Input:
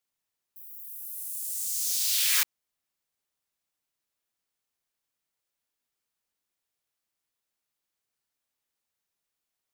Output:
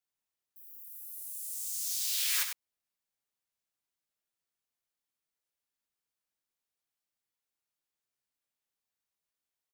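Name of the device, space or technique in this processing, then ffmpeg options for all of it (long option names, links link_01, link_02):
slapback doubling: -filter_complex "[0:a]asplit=3[link_01][link_02][link_03];[link_02]adelay=16,volume=-8.5dB[link_04];[link_03]adelay=98,volume=-7dB[link_05];[link_01][link_04][link_05]amix=inputs=3:normalize=0,volume=-7dB"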